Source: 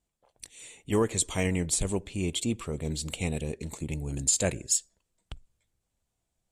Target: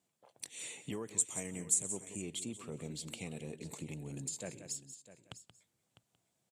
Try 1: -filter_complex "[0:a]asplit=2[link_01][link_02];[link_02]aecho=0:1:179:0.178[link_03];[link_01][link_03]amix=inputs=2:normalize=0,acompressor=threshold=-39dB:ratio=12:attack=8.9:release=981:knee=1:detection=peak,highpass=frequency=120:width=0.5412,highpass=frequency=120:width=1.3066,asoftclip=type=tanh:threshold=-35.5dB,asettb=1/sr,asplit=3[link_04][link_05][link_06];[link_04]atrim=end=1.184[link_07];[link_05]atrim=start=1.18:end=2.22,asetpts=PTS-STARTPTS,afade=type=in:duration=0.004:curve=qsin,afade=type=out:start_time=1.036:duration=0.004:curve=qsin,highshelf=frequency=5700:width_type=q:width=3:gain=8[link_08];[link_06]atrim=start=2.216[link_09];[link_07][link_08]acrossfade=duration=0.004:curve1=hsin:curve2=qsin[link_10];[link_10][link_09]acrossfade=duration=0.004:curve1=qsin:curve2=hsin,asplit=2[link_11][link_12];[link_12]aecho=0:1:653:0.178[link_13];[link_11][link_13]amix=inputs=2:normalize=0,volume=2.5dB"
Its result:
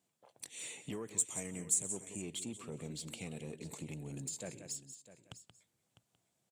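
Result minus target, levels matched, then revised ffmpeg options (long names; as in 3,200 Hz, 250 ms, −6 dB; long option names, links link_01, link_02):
soft clipping: distortion +10 dB
-filter_complex "[0:a]asplit=2[link_01][link_02];[link_02]aecho=0:1:179:0.178[link_03];[link_01][link_03]amix=inputs=2:normalize=0,acompressor=threshold=-39dB:ratio=12:attack=8.9:release=981:knee=1:detection=peak,highpass=frequency=120:width=0.5412,highpass=frequency=120:width=1.3066,asoftclip=type=tanh:threshold=-28.5dB,asettb=1/sr,asplit=3[link_04][link_05][link_06];[link_04]atrim=end=1.184[link_07];[link_05]atrim=start=1.18:end=2.22,asetpts=PTS-STARTPTS,afade=type=in:duration=0.004:curve=qsin,afade=type=out:start_time=1.036:duration=0.004:curve=qsin,highshelf=frequency=5700:width_type=q:width=3:gain=8[link_08];[link_06]atrim=start=2.216[link_09];[link_07][link_08]acrossfade=duration=0.004:curve1=hsin:curve2=qsin[link_10];[link_10][link_09]acrossfade=duration=0.004:curve1=qsin:curve2=hsin,asplit=2[link_11][link_12];[link_12]aecho=0:1:653:0.178[link_13];[link_11][link_13]amix=inputs=2:normalize=0,volume=2.5dB"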